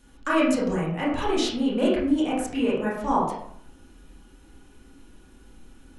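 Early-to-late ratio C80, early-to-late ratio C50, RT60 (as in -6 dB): 6.0 dB, 2.0 dB, 0.60 s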